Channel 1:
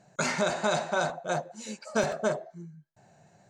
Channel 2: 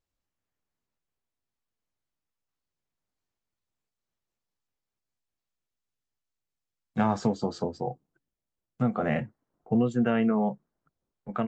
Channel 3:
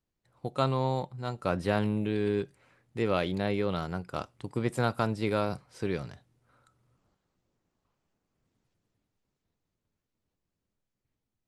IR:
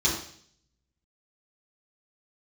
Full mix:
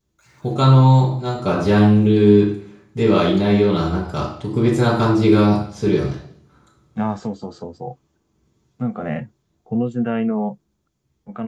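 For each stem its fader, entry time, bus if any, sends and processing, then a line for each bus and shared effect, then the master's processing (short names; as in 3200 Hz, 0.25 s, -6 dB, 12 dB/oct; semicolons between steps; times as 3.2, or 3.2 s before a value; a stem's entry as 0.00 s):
-19.5 dB, 0.00 s, no send, HPF 1200 Hz; limiter -27.5 dBFS, peak gain reduction 11 dB; requantised 8-bit, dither none
-4.0 dB, 0.00 s, no send, harmonic-percussive split harmonic +8 dB
+3.0 dB, 0.00 s, send -4.5 dB, dry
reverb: on, RT60 0.55 s, pre-delay 3 ms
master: dry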